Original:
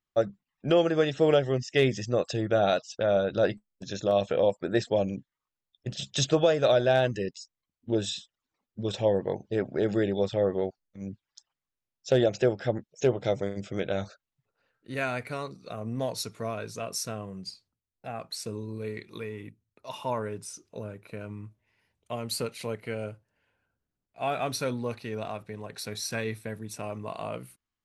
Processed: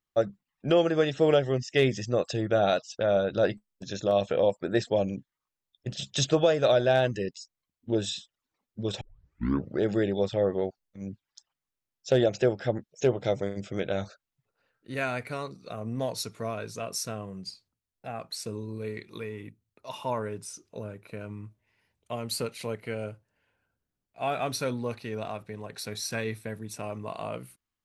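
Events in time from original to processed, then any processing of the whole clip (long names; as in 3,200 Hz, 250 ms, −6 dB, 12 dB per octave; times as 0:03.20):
0:09.01: tape start 0.81 s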